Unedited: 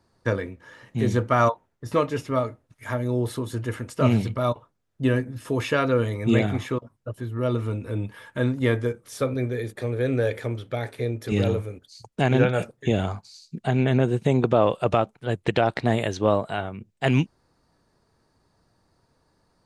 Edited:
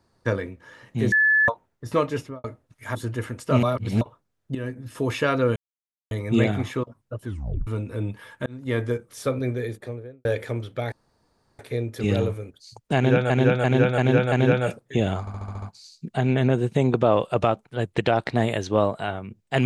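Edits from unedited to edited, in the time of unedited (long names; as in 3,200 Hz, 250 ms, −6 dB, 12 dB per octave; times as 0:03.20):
0:01.12–0:01.48: beep over 1,730 Hz −15 dBFS
0:02.17–0:02.44: fade out and dull
0:02.95–0:03.45: remove
0:04.13–0:04.51: reverse
0:05.05–0:05.47: fade in, from −14 dB
0:06.06: splice in silence 0.55 s
0:07.21: tape stop 0.41 s
0:08.41–0:08.82: fade in
0:09.56–0:10.20: fade out and dull
0:10.87: splice in room tone 0.67 s
0:12.24–0:12.58: repeat, 5 plays
0:13.12: stutter 0.07 s, 7 plays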